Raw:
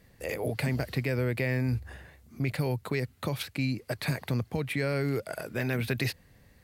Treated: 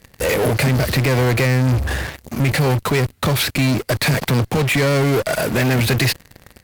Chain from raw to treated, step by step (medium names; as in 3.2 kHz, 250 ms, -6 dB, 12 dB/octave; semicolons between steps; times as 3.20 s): 4.14–4.75 s: high-pass 91 Hz 24 dB/octave; in parallel at -11.5 dB: fuzz box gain 50 dB, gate -52 dBFS; on the sum: trim +5.5 dB